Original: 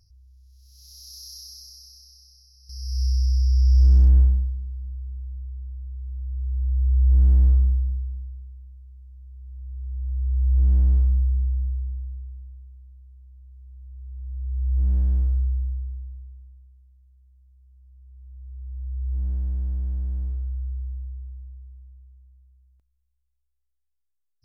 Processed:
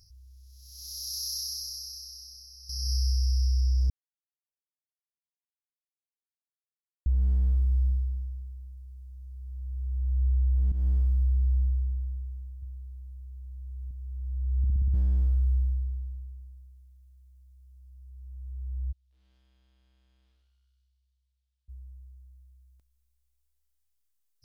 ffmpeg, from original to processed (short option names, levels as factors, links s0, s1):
-filter_complex "[0:a]asettb=1/sr,asplit=3[s0][s1][s2];[s0]atrim=end=12.624[s3];[s1]atrim=start=12.62:end=13.91,asetpts=PTS-STARTPTS,afade=t=in:d=0.004:c=qsin,afade=t=out:st=1.286:d=0.004:c=qsin,equalizer=f=89:t=o:w=0.77:g=11.5[s4];[s2]atrim=start=13.906[s5];[s3][s4]acrossfade=d=0.004:c1=hsin:c2=qsin[s6];[s6][s5]acrossfade=d=0.004:c1=qsin:c2=hsin,asplit=3[s7][s8][s9];[s7]afade=t=out:st=18.91:d=0.02[s10];[s8]bandpass=f=3500:t=q:w=2.2,afade=t=in:st=18.91:d=0.02,afade=t=out:st=21.68:d=0.02[s11];[s9]afade=t=in:st=21.68:d=0.02[s12];[s10][s11][s12]amix=inputs=3:normalize=0,asplit=10[s13][s14][s15][s16][s17][s18][s19][s20][s21][s22];[s13]atrim=end=3.9,asetpts=PTS-STARTPTS,afade=t=out:st=3.896:d=0.004:c=hsin[s23];[s14]atrim=start=3.9:end=7.06,asetpts=PTS-STARTPTS,volume=0[s24];[s15]atrim=start=7.06:end=10.72,asetpts=PTS-STARTPTS,afade=t=in:d=0.004:c=hsin,afade=t=out:st=3.656:d=0.004:c=hsin:silence=0.177828[s25];[s16]atrim=start=10.72:end=14.642,asetpts=PTS-STARTPTS,afade=t=in:d=0.45:silence=0.177828[s26];[s17]atrim=start=14.578:end=14.642[s27];[s18]atrim=start=14.578:end=14.642[s28];[s19]atrim=start=14.578:end=14.642[s29];[s20]atrim=start=14.578:end=14.642[s30];[s21]atrim=start=14.578:end=14.642[s31];[s22]atrim=start=14.938[s32];[s23][s24][s25][s26]concat=n=4:v=0:a=1[s33];[s33][s27]acrossfade=d=0.004:c1=hsin:c2=hsin[s34];[s34][s28]acrossfade=d=0.004:c1=hsin:c2=hsin[s35];[s35][s29]acrossfade=d=0.004:c1=hsin:c2=hsin[s36];[s36][s30]acrossfade=d=0.004:c1=hsin:c2=hsin[s37];[s37][s31]acrossfade=d=0.004:c1=hsin:c2=hsin[s38];[s38][s32]acrossfade=d=0.004:c1=hsin:c2=hsin,highshelf=f=3300:g=10,alimiter=limit=0.1:level=0:latency=1:release=34"